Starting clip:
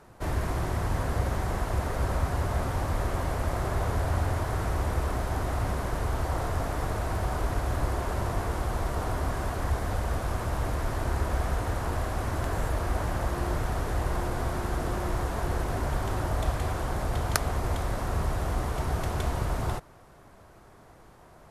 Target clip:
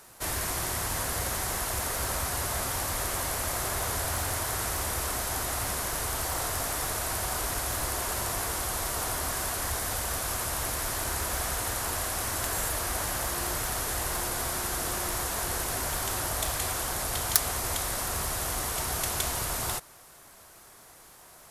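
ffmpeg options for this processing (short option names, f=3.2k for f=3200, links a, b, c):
-af "lowshelf=f=240:g=-5.5,volume=22dB,asoftclip=hard,volume=-22dB,crystalizer=i=8:c=0,volume=-4dB"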